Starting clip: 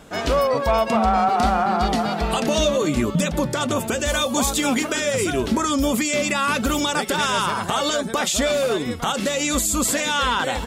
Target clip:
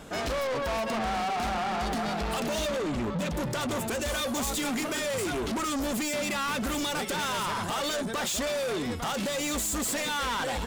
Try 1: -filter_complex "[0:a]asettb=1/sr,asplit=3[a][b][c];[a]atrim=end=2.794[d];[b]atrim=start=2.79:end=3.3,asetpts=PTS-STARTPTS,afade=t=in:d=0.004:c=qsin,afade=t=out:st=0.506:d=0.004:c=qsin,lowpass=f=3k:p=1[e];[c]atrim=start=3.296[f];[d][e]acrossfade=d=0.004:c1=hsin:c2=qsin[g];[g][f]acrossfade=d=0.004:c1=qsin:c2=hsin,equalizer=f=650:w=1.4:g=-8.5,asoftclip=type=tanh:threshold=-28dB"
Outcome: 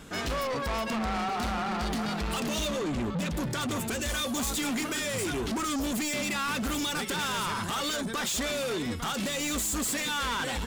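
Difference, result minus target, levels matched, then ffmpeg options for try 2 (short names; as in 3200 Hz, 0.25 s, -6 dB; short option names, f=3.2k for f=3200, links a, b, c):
500 Hz band -3.0 dB
-filter_complex "[0:a]asettb=1/sr,asplit=3[a][b][c];[a]atrim=end=2.794[d];[b]atrim=start=2.79:end=3.3,asetpts=PTS-STARTPTS,afade=t=in:d=0.004:c=qsin,afade=t=out:st=0.506:d=0.004:c=qsin,lowpass=f=3k:p=1[e];[c]atrim=start=3.296[f];[d][e]acrossfade=d=0.004:c1=hsin:c2=qsin[g];[g][f]acrossfade=d=0.004:c1=qsin:c2=hsin,asoftclip=type=tanh:threshold=-28dB"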